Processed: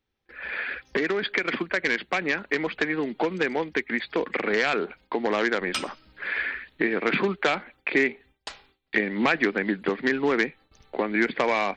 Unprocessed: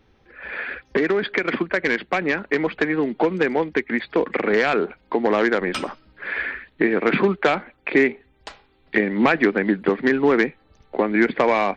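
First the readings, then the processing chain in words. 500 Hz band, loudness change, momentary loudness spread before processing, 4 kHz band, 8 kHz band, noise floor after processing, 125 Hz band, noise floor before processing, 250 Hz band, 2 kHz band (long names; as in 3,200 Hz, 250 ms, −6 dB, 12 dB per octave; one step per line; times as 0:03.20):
−6.5 dB, −4.5 dB, 10 LU, +0.5 dB, can't be measured, −73 dBFS, −6.5 dB, −60 dBFS, −6.5 dB, −2.5 dB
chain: noise gate with hold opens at −45 dBFS
high-shelf EQ 2,100 Hz +10 dB
in parallel at −2 dB: downward compressor, threshold −30 dBFS, peak gain reduction 18 dB
on the sum: level −8 dB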